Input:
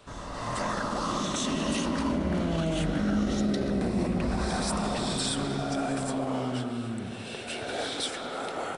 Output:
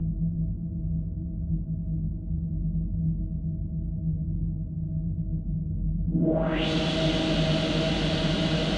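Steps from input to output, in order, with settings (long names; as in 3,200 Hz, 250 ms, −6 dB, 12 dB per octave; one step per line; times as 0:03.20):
extreme stretch with random phases 49×, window 0.50 s, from 0:02.65
low-pass filter sweep 110 Hz → 4,400 Hz, 0:06.05–0:06.69
upward compression, threshold −50 dBFS
level +2.5 dB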